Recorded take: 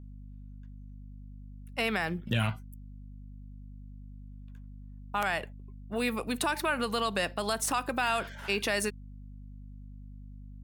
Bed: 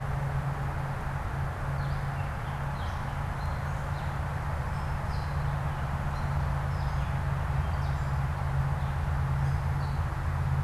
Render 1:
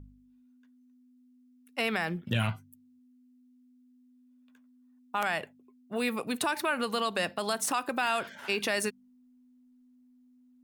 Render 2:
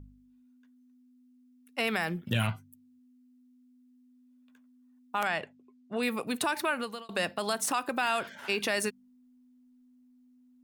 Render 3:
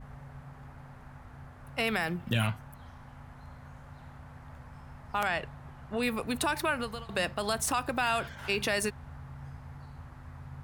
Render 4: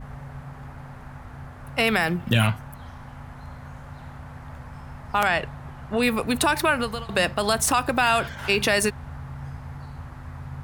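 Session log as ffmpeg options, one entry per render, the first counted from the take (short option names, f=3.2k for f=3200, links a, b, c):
-af "bandreject=f=50:t=h:w=4,bandreject=f=100:t=h:w=4,bandreject=f=150:t=h:w=4,bandreject=f=200:t=h:w=4"
-filter_complex "[0:a]asettb=1/sr,asplit=3[a][b][c];[a]atrim=end=1.874[d];[b]atrim=start=1.87:end=2.47,asetpts=PTS-STARTPTS,afade=t=in:d=0.004:c=qsin,afade=t=out:st=0.596:d=0.004:c=qsin,highshelf=f=9k:g=8.5[e];[c]atrim=start=2.466[f];[d][e]acrossfade=d=0.004:c1=hsin:c2=qsin[g];[g][f]acrossfade=d=0.004:c1=qsin:c2=hsin,asettb=1/sr,asplit=3[h][i][j];[h]atrim=end=5.274[k];[i]atrim=start=5.27:end=6.03,asetpts=PTS-STARTPTS,afade=t=in:d=0.004:c=qsin,afade=t=out:st=0.756:d=0.004:c=qsin,lowpass=6.7k[l];[j]atrim=start=6.026[m];[k][l]acrossfade=d=0.004:c1=hsin:c2=qsin[n];[n][m]acrossfade=d=0.004:c1=qsin:c2=hsin,asplit=2[o][p];[o]atrim=end=7.09,asetpts=PTS-STARTPTS,afade=t=out:st=6.69:d=0.4[q];[p]atrim=start=7.09,asetpts=PTS-STARTPTS,afade=t=in:d=0.004:c=hsin[r];[q][r]concat=n=2:v=0:a=1"
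-filter_complex "[1:a]volume=-16.5dB[a];[0:a][a]amix=inputs=2:normalize=0"
-af "volume=8.5dB"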